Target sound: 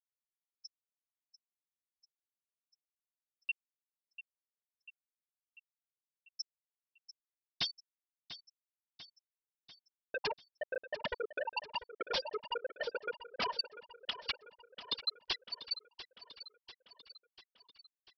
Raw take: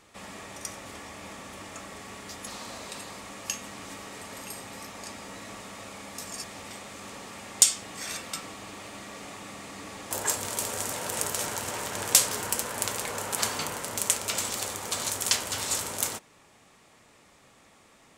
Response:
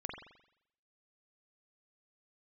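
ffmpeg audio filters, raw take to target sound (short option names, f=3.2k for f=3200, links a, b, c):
-filter_complex "[0:a]highpass=260,afftfilt=real='re*gte(hypot(re,im),0.112)':imag='im*gte(hypot(re,im),0.112)':win_size=1024:overlap=0.75,lowpass=3.1k,highshelf=f=2.4k:g=-9,acompressor=threshold=-59dB:ratio=6,aresample=11025,aeval=exprs='0.00596*sin(PI/2*5.62*val(0)/0.00596)':c=same,aresample=44100,crystalizer=i=2:c=0,asplit=2[a][b];[b]aecho=0:1:693|1386|2079|2772|3465|4158:0.211|0.12|0.0687|0.0391|0.0223|0.0127[c];[a][c]amix=inputs=2:normalize=0,volume=12.5dB"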